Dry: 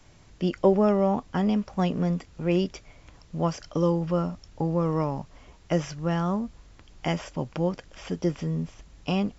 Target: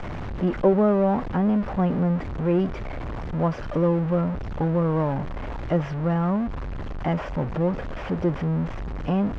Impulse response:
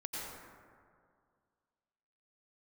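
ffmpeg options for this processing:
-af "aeval=exprs='val(0)+0.5*0.0596*sgn(val(0))':c=same,lowpass=1.5k"

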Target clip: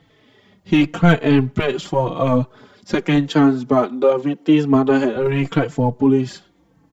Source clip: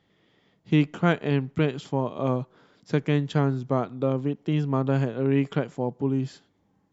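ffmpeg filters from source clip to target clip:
-filter_complex "[0:a]asettb=1/sr,asplit=3[a][b][c];[a]atrim=end=2.944[d];[b]atrim=start=2.94:end=5.16,asetpts=PTS-STARTPTS,afade=t=in:d=0.004:c=qsin,afade=t=out:st=2.216:d=0.004:c=qsin,highpass=f=200:w=0.5412,highpass=f=200:w=1.3066[e];[c]atrim=start=5.156[f];[d][e]acrossfade=d=0.004:c1=hsin:c2=qsin[g];[g][f]acrossfade=d=0.004:c1=qsin:c2=hsin,aphaser=in_gain=1:out_gain=1:delay=4:decay=0.38:speed=1.9:type=triangular,apsyclip=18.5dB,asplit=2[h][i];[i]adelay=4,afreqshift=-0.88[j];[h][j]amix=inputs=2:normalize=1,volume=-5dB"

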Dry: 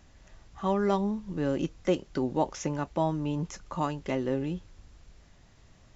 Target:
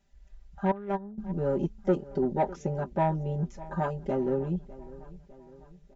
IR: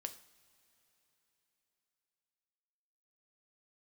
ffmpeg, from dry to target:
-filter_complex "[0:a]afwtdn=0.0158,asettb=1/sr,asplit=3[a][b][c];[a]atrim=end=0.714[d];[b]atrim=start=0.71:end=1.18,asetpts=PTS-STARTPTS,afade=t=in:d=0.004:c=qsin,afade=t=out:st=0.466:d=0.004:c=qsin,agate=range=-19dB:threshold=-22dB:ratio=16:detection=peak[e];[c]atrim=start=1.176[f];[d][e]acrossfade=d=0.004:c1=hsin:c2=qsin[g];[g][f]acrossfade=d=0.004:c1=qsin:c2=hsin,aecho=1:1:5.1:0.95,asoftclip=type=tanh:threshold=-16dB,asuperstop=centerf=1100:order=12:qfactor=6.2,asplit=2[h][i];[i]adelay=603,lowpass=f=4.6k:p=1,volume=-19dB,asplit=2[j][k];[k]adelay=603,lowpass=f=4.6k:p=1,volume=0.54,asplit=2[l][m];[m]adelay=603,lowpass=f=4.6k:p=1,volume=0.54,asplit=2[n][o];[o]adelay=603,lowpass=f=4.6k:p=1,volume=0.54[p];[h][j][l][n][p]amix=inputs=5:normalize=0"

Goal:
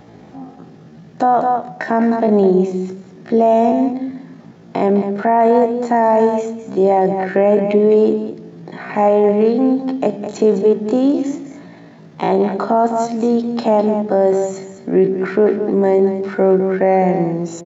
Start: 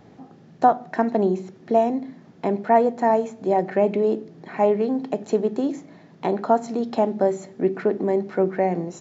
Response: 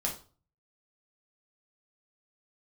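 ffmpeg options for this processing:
-filter_complex "[0:a]atempo=0.51,asplit=2[a][b];[b]aecho=0:1:208:0.282[c];[a][c]amix=inputs=2:normalize=0,alimiter=limit=-13dB:level=0:latency=1:release=18,volume=8.5dB"

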